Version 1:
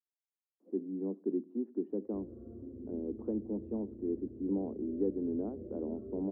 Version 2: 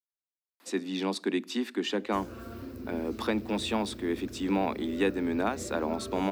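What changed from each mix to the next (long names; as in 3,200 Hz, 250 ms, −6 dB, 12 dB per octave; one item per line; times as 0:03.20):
master: remove transistor ladder low-pass 500 Hz, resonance 35%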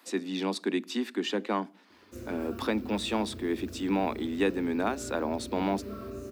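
speech: entry −0.60 s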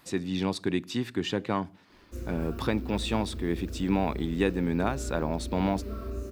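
speech: remove Butterworth high-pass 200 Hz 72 dB per octave
master: remove high-pass filter 91 Hz 24 dB per octave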